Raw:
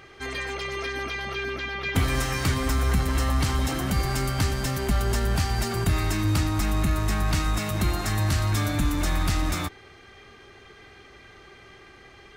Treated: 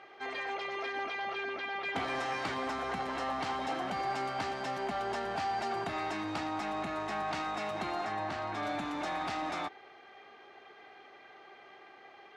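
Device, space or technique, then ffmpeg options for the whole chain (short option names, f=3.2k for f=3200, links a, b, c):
intercom: -filter_complex "[0:a]asettb=1/sr,asplit=3[a][b][c];[a]atrim=end=8.054[d];[b]atrim=start=8.05:end=8.63,asetpts=PTS-STARTPTS,afade=t=in:d=0.004:c=qsin,afade=t=out:st=0.576:d=0.004:c=qsin,highshelf=f=3.7k:g=-8.5[e];[c]atrim=start=8.626[f];[d][e]acrossfade=d=0.004:c1=hsin:c2=qsin[g];[g][f]acrossfade=d=0.004:c1=qsin:c2=hsin,highpass=320,lowpass=3.7k,equalizer=f=760:t=o:w=0.59:g=10,asoftclip=type=tanh:threshold=-18dB,volume=-6dB"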